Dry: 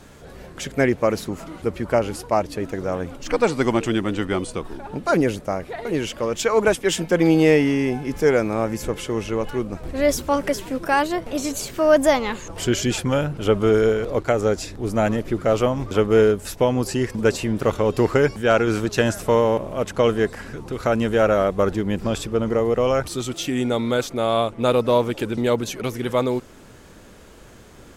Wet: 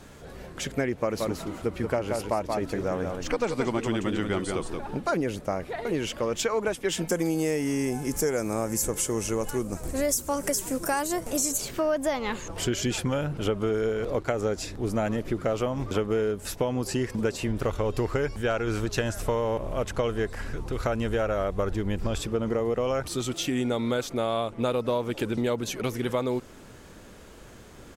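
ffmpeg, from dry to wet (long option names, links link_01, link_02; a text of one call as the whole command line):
ffmpeg -i in.wav -filter_complex "[0:a]asplit=3[link_01][link_02][link_03];[link_01]afade=type=out:start_time=1.12:duration=0.02[link_04];[link_02]aecho=1:1:177:0.473,afade=type=in:start_time=1.12:duration=0.02,afade=type=out:start_time=5:duration=0.02[link_05];[link_03]afade=type=in:start_time=5:duration=0.02[link_06];[link_04][link_05][link_06]amix=inputs=3:normalize=0,asplit=3[link_07][link_08][link_09];[link_07]afade=type=out:start_time=7.07:duration=0.02[link_10];[link_08]highshelf=frequency=5200:width_type=q:width=1.5:gain=13.5,afade=type=in:start_time=7.07:duration=0.02,afade=type=out:start_time=11.56:duration=0.02[link_11];[link_09]afade=type=in:start_time=11.56:duration=0.02[link_12];[link_10][link_11][link_12]amix=inputs=3:normalize=0,asplit=3[link_13][link_14][link_15];[link_13]afade=type=out:start_time=17.47:duration=0.02[link_16];[link_14]asubboost=boost=3.5:cutoff=85,afade=type=in:start_time=17.47:duration=0.02,afade=type=out:start_time=22.18:duration=0.02[link_17];[link_15]afade=type=in:start_time=22.18:duration=0.02[link_18];[link_16][link_17][link_18]amix=inputs=3:normalize=0,acompressor=threshold=-21dB:ratio=6,volume=-2dB" out.wav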